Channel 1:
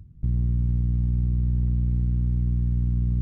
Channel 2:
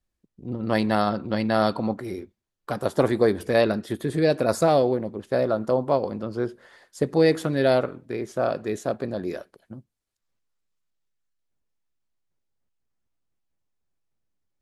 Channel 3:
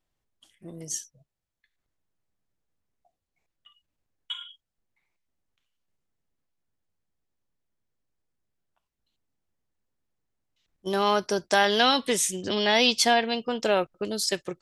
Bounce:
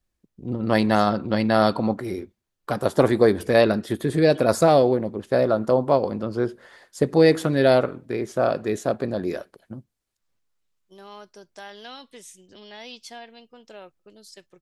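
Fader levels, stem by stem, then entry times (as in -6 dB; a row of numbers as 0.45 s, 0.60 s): mute, +3.0 dB, -19.5 dB; mute, 0.00 s, 0.05 s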